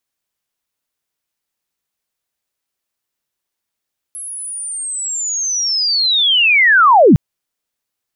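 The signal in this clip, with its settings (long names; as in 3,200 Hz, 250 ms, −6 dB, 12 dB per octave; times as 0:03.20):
glide linear 11,000 Hz → 110 Hz −25.5 dBFS → −3.5 dBFS 3.01 s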